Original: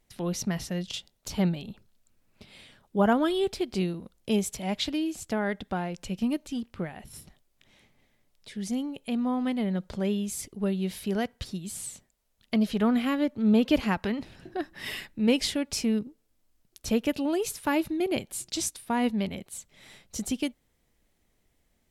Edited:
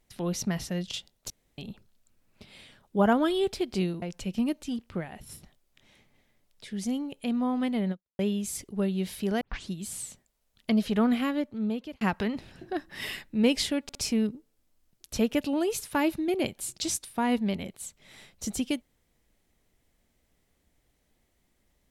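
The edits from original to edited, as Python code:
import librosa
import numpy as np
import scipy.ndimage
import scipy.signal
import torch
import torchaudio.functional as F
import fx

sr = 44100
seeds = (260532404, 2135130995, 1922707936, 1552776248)

y = fx.edit(x, sr, fx.room_tone_fill(start_s=1.3, length_s=0.28),
    fx.cut(start_s=4.02, length_s=1.84),
    fx.fade_out_span(start_s=9.75, length_s=0.28, curve='exp'),
    fx.tape_start(start_s=11.25, length_s=0.28),
    fx.fade_out_span(start_s=12.98, length_s=0.87),
    fx.stutter(start_s=15.67, slice_s=0.06, count=3), tone=tone)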